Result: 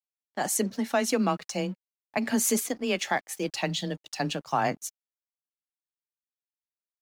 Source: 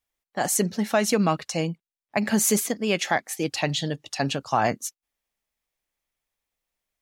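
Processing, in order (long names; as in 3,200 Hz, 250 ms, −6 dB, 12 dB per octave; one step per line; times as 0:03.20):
frequency shifter +18 Hz
dead-zone distortion −49.5 dBFS
level −3.5 dB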